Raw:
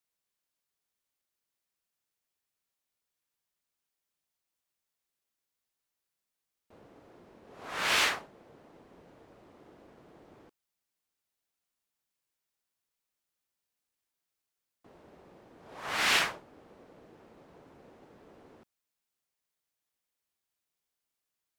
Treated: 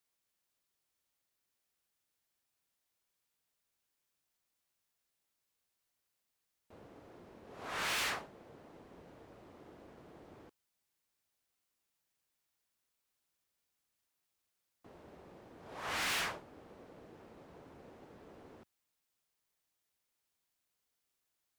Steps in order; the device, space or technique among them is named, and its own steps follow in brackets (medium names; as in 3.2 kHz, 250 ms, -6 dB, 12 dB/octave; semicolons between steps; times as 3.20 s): open-reel tape (saturation -33 dBFS, distortion -5 dB; peaking EQ 80 Hz +3.5 dB 1.04 oct; white noise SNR 40 dB)